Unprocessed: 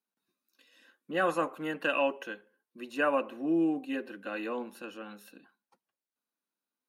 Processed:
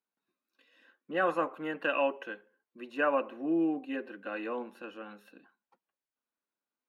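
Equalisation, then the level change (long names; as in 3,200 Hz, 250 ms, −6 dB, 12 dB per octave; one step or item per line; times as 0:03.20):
bass and treble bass −5 dB, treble −14 dB
0.0 dB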